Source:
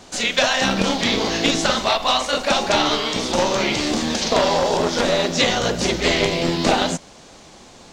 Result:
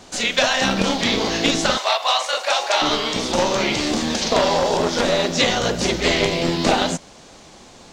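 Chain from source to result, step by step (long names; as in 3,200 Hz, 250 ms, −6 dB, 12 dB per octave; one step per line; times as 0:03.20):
0:01.77–0:02.82: high-pass filter 540 Hz 24 dB per octave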